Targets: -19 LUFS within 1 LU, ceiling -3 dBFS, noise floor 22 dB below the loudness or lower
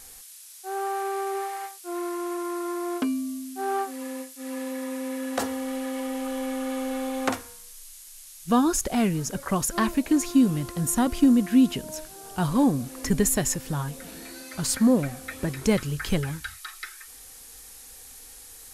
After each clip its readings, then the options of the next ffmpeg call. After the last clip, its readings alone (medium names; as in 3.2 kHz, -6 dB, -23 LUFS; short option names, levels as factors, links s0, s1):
noise floor -46 dBFS; noise floor target -49 dBFS; loudness -26.5 LUFS; peak level -9.0 dBFS; loudness target -19.0 LUFS
-> -af "afftdn=nr=6:nf=-46"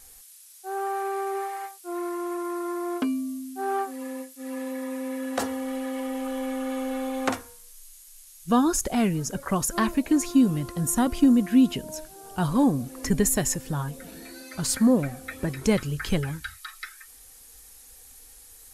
noise floor -50 dBFS; loudness -26.5 LUFS; peak level -9.0 dBFS; loudness target -19.0 LUFS
-> -af "volume=2.37,alimiter=limit=0.708:level=0:latency=1"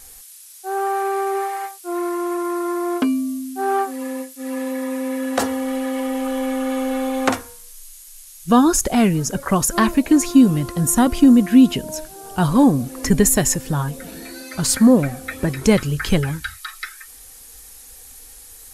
loudness -19.0 LUFS; peak level -3.0 dBFS; noise floor -42 dBFS